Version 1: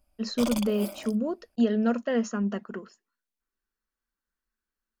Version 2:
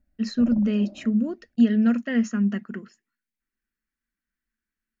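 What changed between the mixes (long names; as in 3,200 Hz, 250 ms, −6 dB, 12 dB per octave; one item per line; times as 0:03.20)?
background: add inverse Chebyshev low-pass filter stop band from 4,400 Hz, stop band 80 dB
master: add graphic EQ with 10 bands 125 Hz +7 dB, 250 Hz +6 dB, 500 Hz −7 dB, 1,000 Hz −8 dB, 2,000 Hz +9 dB, 4,000 Hz −3 dB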